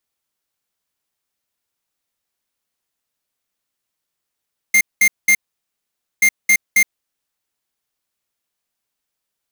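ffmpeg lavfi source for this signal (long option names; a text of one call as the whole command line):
ffmpeg -f lavfi -i "aevalsrc='0.266*(2*lt(mod(2110*t,1),0.5)-1)*clip(min(mod(mod(t,1.48),0.27),0.07-mod(mod(t,1.48),0.27))/0.005,0,1)*lt(mod(t,1.48),0.81)':duration=2.96:sample_rate=44100" out.wav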